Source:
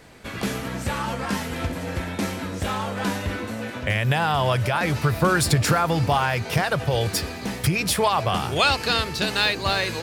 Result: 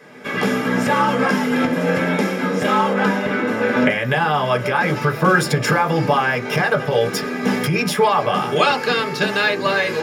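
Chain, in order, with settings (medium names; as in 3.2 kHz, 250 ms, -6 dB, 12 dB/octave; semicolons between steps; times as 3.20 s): recorder AGC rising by 16 dB/s; 2.93–3.77 s: treble shelf 4.2 kHz -6.5 dB; reverberation RT60 0.25 s, pre-delay 3 ms, DRR 1 dB; trim -4 dB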